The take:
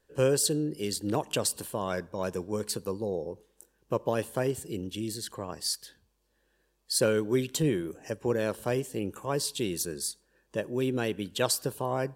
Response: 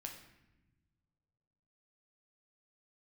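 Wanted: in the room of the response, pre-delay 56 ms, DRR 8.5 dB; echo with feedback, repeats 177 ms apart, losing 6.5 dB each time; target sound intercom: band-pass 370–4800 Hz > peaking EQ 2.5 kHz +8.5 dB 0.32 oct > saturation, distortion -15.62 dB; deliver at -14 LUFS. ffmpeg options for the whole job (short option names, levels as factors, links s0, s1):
-filter_complex "[0:a]aecho=1:1:177|354|531|708|885|1062:0.473|0.222|0.105|0.0491|0.0231|0.0109,asplit=2[s0][s1];[1:a]atrim=start_sample=2205,adelay=56[s2];[s1][s2]afir=irnorm=-1:irlink=0,volume=0.562[s3];[s0][s3]amix=inputs=2:normalize=0,highpass=370,lowpass=4800,equalizer=f=2500:t=o:w=0.32:g=8.5,asoftclip=threshold=0.075,volume=9.44"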